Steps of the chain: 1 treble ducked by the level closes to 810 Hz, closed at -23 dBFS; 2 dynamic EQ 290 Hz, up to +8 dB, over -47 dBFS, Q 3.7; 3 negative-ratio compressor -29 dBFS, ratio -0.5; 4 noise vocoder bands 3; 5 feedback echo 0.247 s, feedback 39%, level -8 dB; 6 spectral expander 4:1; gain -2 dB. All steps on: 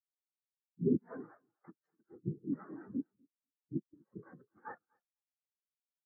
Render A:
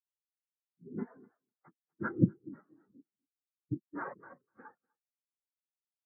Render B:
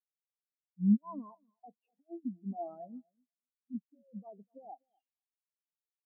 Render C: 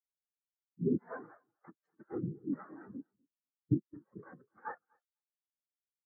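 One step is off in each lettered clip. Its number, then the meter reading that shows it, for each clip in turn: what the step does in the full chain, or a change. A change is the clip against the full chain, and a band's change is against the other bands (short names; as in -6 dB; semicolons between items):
3, crest factor change +6.0 dB; 4, 500 Hz band -9.5 dB; 2, momentary loudness spread change -2 LU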